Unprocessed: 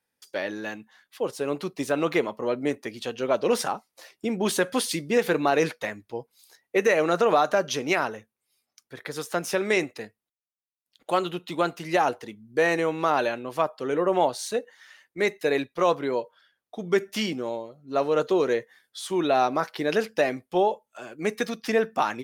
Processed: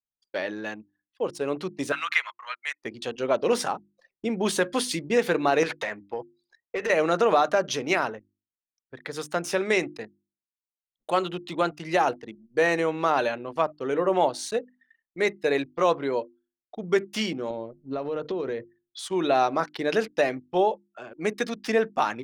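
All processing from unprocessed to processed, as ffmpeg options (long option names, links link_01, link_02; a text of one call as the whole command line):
ffmpeg -i in.wav -filter_complex "[0:a]asettb=1/sr,asplit=3[link_01][link_02][link_03];[link_01]atrim=end=1.924[link_04];[link_02]atrim=start=1.92:end=2.83,asetpts=PTS-STARTPTS,afade=type=in:duration=0.004:curve=qsin,afade=type=out:start_time=0.906:duration=0.004:curve=qsin,highpass=frequency=1200:width=0.5412,highpass=frequency=1200:width=1.3066,equalizer=frequency=1900:width=0.66:gain=7.5[link_05];[link_03]atrim=start=2.826[link_06];[link_04][link_05]acrossfade=duration=0.004:curve1=hsin:curve2=qsin[link_07];[link_07][link_06]acrossfade=duration=0.004:curve1=qsin:curve2=hsin,asettb=1/sr,asplit=3[link_08][link_09][link_10];[link_08]atrim=end=5.634[link_11];[link_09]atrim=start=5.63:end=6.9,asetpts=PTS-STARTPTS,afade=type=in:duration=0.004:curve=qsin,afade=type=out:start_time=1.266:duration=0.004:curve=qsin,asplit=2[link_12][link_13];[link_13]highpass=frequency=720:poles=1,volume=16dB,asoftclip=type=tanh:threshold=-9.5dB[link_14];[link_12][link_14]amix=inputs=2:normalize=0,lowpass=frequency=3300:poles=1,volume=-6dB,acompressor=threshold=-25dB:ratio=10:attack=3.2:release=140:knee=1:detection=peak[link_15];[link_10]atrim=start=6.896[link_16];[link_11][link_15]acrossfade=duration=0.004:curve1=hsin:curve2=qsin[link_17];[link_17][link_16]acrossfade=duration=0.004:curve1=qsin:curve2=hsin,asettb=1/sr,asplit=3[link_18][link_19][link_20];[link_18]atrim=end=17.504[link_21];[link_19]atrim=start=17.5:end=18.99,asetpts=PTS-STARTPTS,afade=type=in:duration=0.004:curve=qsin,afade=type=out:start_time=1.486:duration=0.004:curve=qsin,lowpass=frequency=5600:width=0.5412,lowpass=frequency=5600:width=1.3066,acompressor=threshold=-29dB:ratio=6:attack=3.2:release=140:knee=1:detection=peak,lowshelf=frequency=340:gain=7.5[link_22];[link_20]atrim=start=18.986[link_23];[link_21][link_22]acrossfade=duration=0.004:curve1=hsin:curve2=qsin[link_24];[link_24][link_23]acrossfade=duration=0.004:curve1=qsin:curve2=hsin,anlmdn=0.398,equalizer=frequency=13000:width=1.9:gain=-9,bandreject=frequency=50:width_type=h:width=6,bandreject=frequency=100:width_type=h:width=6,bandreject=frequency=150:width_type=h:width=6,bandreject=frequency=200:width_type=h:width=6,bandreject=frequency=250:width_type=h:width=6,bandreject=frequency=300:width_type=h:width=6,bandreject=frequency=350:width_type=h:width=6" out.wav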